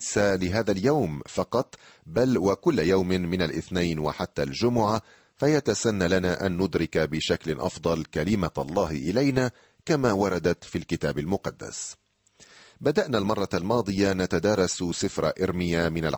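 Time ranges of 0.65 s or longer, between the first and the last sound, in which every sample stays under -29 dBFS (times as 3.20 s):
11.89–12.86 s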